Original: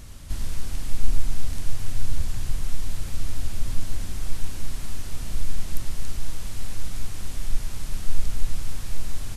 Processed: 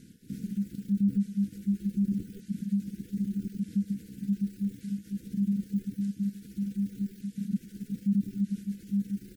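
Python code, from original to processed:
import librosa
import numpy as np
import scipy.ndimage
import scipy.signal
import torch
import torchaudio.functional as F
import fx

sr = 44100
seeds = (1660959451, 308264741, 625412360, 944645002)

y = fx.pitch_ramps(x, sr, semitones=11.5, every_ms=1202)
y = fx.dereverb_blind(y, sr, rt60_s=1.5)
y = 10.0 ** (-9.0 / 20.0) * np.tanh(y / 10.0 ** (-9.0 / 20.0))
y = y * np.sin(2.0 * np.pi * 200.0 * np.arange(len(y)) / sr)
y = fx.brickwall_bandstop(y, sr, low_hz=520.0, high_hz=1400.0)
y = F.gain(torch.from_numpy(y), -8.5).numpy()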